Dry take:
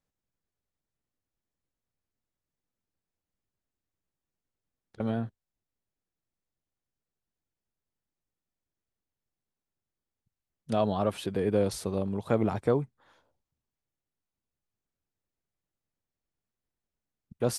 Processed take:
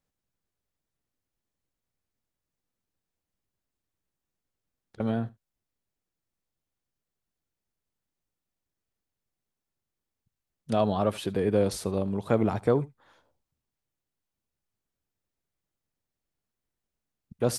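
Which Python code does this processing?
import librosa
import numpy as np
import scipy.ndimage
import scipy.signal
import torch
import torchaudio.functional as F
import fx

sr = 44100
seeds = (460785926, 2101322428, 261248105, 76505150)

y = x + 10.0 ** (-22.0 / 20.0) * np.pad(x, (int(76 * sr / 1000.0), 0))[:len(x)]
y = F.gain(torch.from_numpy(y), 2.0).numpy()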